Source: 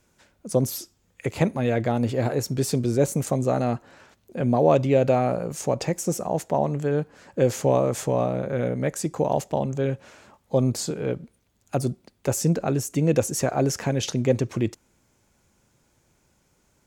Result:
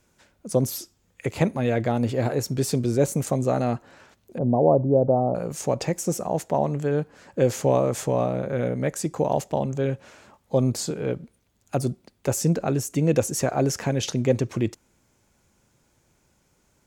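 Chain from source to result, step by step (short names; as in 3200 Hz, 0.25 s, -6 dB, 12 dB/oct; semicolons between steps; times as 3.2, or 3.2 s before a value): 4.38–5.35 steep low-pass 940 Hz 36 dB/oct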